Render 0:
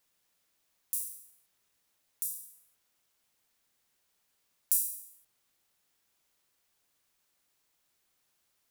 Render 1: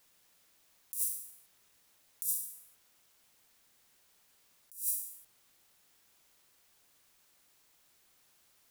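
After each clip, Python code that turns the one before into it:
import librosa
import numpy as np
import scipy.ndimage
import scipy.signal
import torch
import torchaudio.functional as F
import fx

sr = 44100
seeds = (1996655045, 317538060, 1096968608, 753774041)

y = fx.over_compress(x, sr, threshold_db=-37.0, ratio=-0.5)
y = y * librosa.db_to_amplitude(3.0)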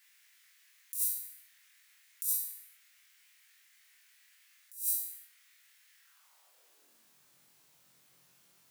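y = fx.filter_sweep_highpass(x, sr, from_hz=1900.0, to_hz=140.0, start_s=5.98, end_s=7.2, q=2.9)
y = fx.room_flutter(y, sr, wall_m=3.9, rt60_s=0.31)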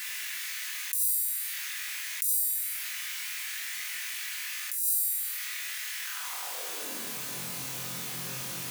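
y = fx.room_shoebox(x, sr, seeds[0], volume_m3=1300.0, walls='mixed', distance_m=1.9)
y = fx.env_flatten(y, sr, amount_pct=70)
y = y * librosa.db_to_amplitude(1.5)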